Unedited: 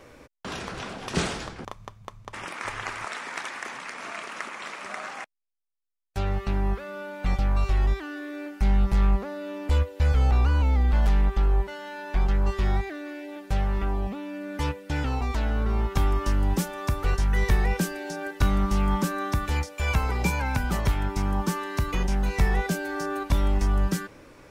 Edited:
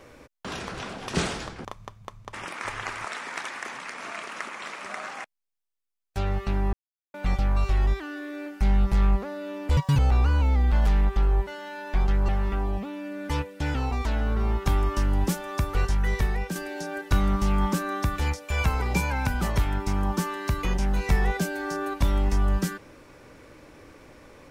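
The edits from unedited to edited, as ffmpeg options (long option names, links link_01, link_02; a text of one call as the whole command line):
ffmpeg -i in.wav -filter_complex "[0:a]asplit=7[link_01][link_02][link_03][link_04][link_05][link_06][link_07];[link_01]atrim=end=6.73,asetpts=PTS-STARTPTS,afade=type=out:start_time=6.726:duration=0.004:curve=hsin[link_08];[link_02]atrim=start=6.73:end=7.14,asetpts=PTS-STARTPTS,volume=0[link_09];[link_03]atrim=start=7.14:end=9.774,asetpts=PTS-STARTPTS,afade=type=in:duration=0.004:curve=hsin[link_10];[link_04]atrim=start=9.77:end=10.19,asetpts=PTS-STARTPTS,asetrate=85995,aresample=44100,atrim=end_sample=9498,asetpts=PTS-STARTPTS[link_11];[link_05]atrim=start=10.186:end=12.492[link_12];[link_06]atrim=start=13.578:end=17.85,asetpts=PTS-STARTPTS,afade=type=out:start_time=3.552:duration=0.72:silence=0.446684[link_13];[link_07]atrim=start=17.85,asetpts=PTS-STARTPTS,afade=type=in:duration=0.004:curve=hsin:silence=0.446684[link_14];[link_08][link_09][link_10]concat=n=3:v=0:a=1[link_15];[link_15][link_11]acrossfade=duration=0.004:curve1=hsin:curve2=hsin[link_16];[link_16][link_12]acrossfade=duration=0.004:curve1=hsin:curve2=hsin[link_17];[link_13][link_14]concat=n=2:v=0:a=1[link_18];[link_17][link_18]acrossfade=duration=0.004:curve1=hsin:curve2=hsin" out.wav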